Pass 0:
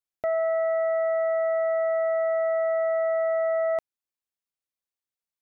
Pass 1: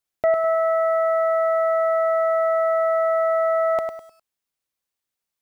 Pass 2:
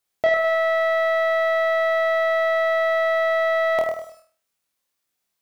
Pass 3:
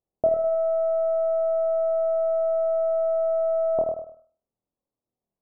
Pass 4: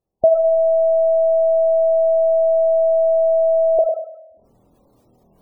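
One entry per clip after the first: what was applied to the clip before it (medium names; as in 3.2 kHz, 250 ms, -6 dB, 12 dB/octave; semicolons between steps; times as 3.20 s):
bit-crushed delay 102 ms, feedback 35%, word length 10-bit, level -6.5 dB; trim +7.5 dB
bass shelf 140 Hz -4.5 dB; saturation -17 dBFS, distortion -20 dB; flutter echo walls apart 4.3 m, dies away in 0.39 s; trim +4.5 dB
Gaussian low-pass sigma 12 samples; trim +4 dB
spectral gate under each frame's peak -20 dB strong; bass shelf 340 Hz +4.5 dB; reverse; upward compressor, threshold -42 dBFS; reverse; trim +7 dB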